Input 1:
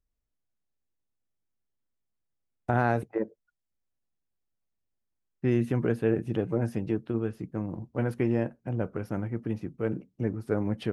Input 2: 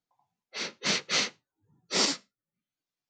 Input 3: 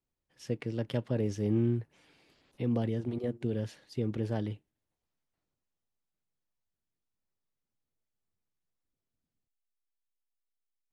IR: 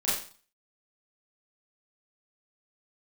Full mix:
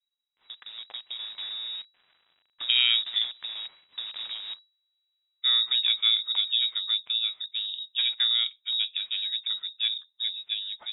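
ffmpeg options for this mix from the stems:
-filter_complex "[0:a]volume=0.562[s0];[2:a]volume=0.501,acrusher=bits=8:dc=4:mix=0:aa=0.000001,acompressor=threshold=0.0126:ratio=10,volume=1[s1];[s0][s1]amix=inputs=2:normalize=0,equalizer=f=210:t=o:w=0.33:g=-12.5,dynaudnorm=f=140:g=13:m=2.51,lowpass=f=3300:t=q:w=0.5098,lowpass=f=3300:t=q:w=0.6013,lowpass=f=3300:t=q:w=0.9,lowpass=f=3300:t=q:w=2.563,afreqshift=-3900"

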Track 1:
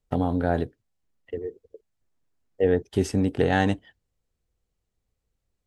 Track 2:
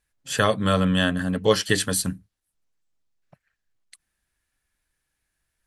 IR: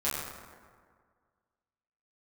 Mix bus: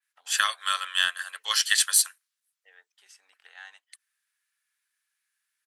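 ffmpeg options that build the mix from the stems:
-filter_complex "[0:a]adelay=50,volume=0.178[s0];[1:a]highpass=350,adynamicequalizer=threshold=0.0126:dfrequency=3100:dqfactor=0.7:tfrequency=3100:tqfactor=0.7:attack=5:release=100:ratio=0.375:range=2.5:mode=boostabove:tftype=highshelf,volume=1.06,asplit=2[s1][s2];[s2]apad=whole_len=251962[s3];[s0][s3]sidechaincompress=threshold=0.0251:ratio=8:attack=16:release=126[s4];[s4][s1]amix=inputs=2:normalize=0,highpass=f=1200:w=0.5412,highpass=f=1200:w=1.3066,aeval=exprs='0.562*(cos(1*acos(clip(val(0)/0.562,-1,1)))-cos(1*PI/2))+0.02*(cos(5*acos(clip(val(0)/0.562,-1,1)))-cos(5*PI/2))+0.0251*(cos(7*acos(clip(val(0)/0.562,-1,1)))-cos(7*PI/2))':c=same"

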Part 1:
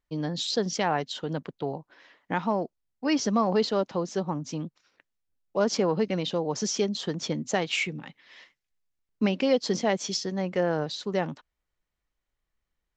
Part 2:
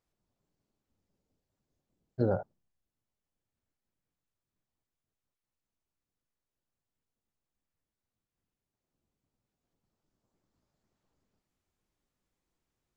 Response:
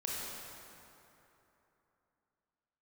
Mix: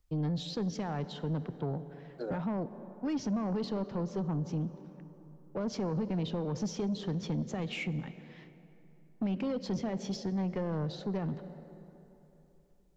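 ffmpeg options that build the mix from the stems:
-filter_complex "[0:a]alimiter=limit=0.119:level=0:latency=1:release=39,aemphasis=mode=reproduction:type=riaa,volume=0.531,asplit=2[s0][s1];[s1]volume=0.168[s2];[1:a]highpass=f=320:w=0.5412,highpass=f=320:w=1.3066,highshelf=f=2100:g=10.5,volume=0.531[s3];[2:a]atrim=start_sample=2205[s4];[s2][s4]afir=irnorm=-1:irlink=0[s5];[s0][s3][s5]amix=inputs=3:normalize=0,acrossover=split=160|3000[s6][s7][s8];[s7]acompressor=threshold=0.0178:ratio=1.5[s9];[s6][s9][s8]amix=inputs=3:normalize=0,asoftclip=type=tanh:threshold=0.0447"

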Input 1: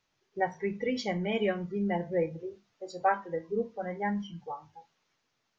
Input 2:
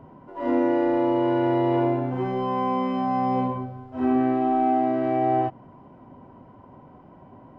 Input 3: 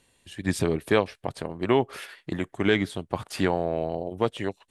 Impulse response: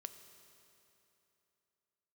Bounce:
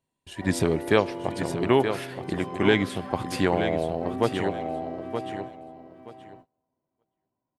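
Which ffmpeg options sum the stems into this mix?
-filter_complex "[0:a]aemphasis=mode=production:type=50fm,volume=0.133[s0];[1:a]aemphasis=mode=production:type=75kf,volume=0.15,asplit=3[s1][s2][s3];[s2]volume=0.631[s4];[s3]volume=0.335[s5];[2:a]volume=0.891,asplit=3[s6][s7][s8];[s7]volume=0.473[s9];[s8]volume=0.501[s10];[3:a]atrim=start_sample=2205[s11];[s4][s9]amix=inputs=2:normalize=0[s12];[s12][s11]afir=irnorm=-1:irlink=0[s13];[s5][s10]amix=inputs=2:normalize=0,aecho=0:1:924|1848|2772:1|0.2|0.04[s14];[s0][s1][s6][s13][s14]amix=inputs=5:normalize=0,agate=range=0.0631:threshold=0.00316:ratio=16:detection=peak"

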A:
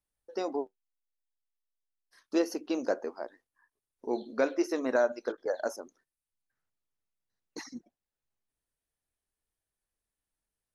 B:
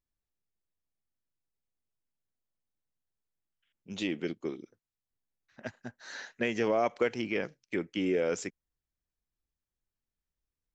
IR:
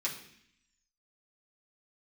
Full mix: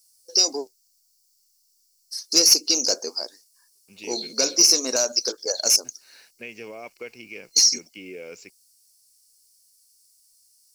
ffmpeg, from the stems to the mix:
-filter_complex "[0:a]aexciter=amount=11.4:drive=9.3:freq=4000,asoftclip=type=tanh:threshold=0.158,volume=1.06[s0];[1:a]equalizer=f=3900:w=7.8:g=8,aeval=exprs='val(0)*gte(abs(val(0)),0.00355)':c=same,volume=0.237[s1];[s0][s1]amix=inputs=2:normalize=0,superequalizer=7b=1.41:12b=3.55:14b=3.16:15b=1.58"

